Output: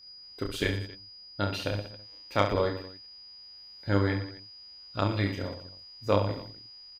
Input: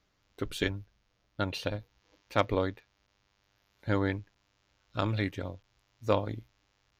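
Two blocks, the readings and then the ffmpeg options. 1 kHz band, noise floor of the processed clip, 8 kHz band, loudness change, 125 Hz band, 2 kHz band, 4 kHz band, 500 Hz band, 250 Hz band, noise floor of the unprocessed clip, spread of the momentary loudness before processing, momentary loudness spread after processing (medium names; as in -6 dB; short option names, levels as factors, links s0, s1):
+2.5 dB, -49 dBFS, no reading, +2.5 dB, +3.5 dB, +2.0 dB, +4.5 dB, +2.5 dB, +2.0 dB, -74 dBFS, 13 LU, 19 LU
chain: -af "aeval=exprs='val(0)+0.00282*sin(2*PI*4900*n/s)':c=same,aecho=1:1:30|69|119.7|185.6|271.3:0.631|0.398|0.251|0.158|0.1"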